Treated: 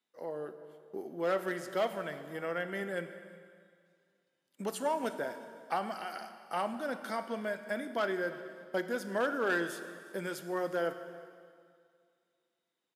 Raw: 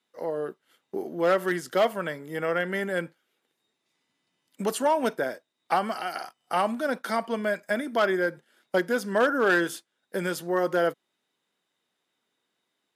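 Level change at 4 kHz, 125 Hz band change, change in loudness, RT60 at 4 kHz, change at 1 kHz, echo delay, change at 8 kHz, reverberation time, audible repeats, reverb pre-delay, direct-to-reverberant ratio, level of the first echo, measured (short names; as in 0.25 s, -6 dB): -8.5 dB, -8.5 dB, -8.5 dB, 2.0 s, -8.5 dB, 0.358 s, -8.5 dB, 2.1 s, 1, 7 ms, 9.0 dB, -22.0 dB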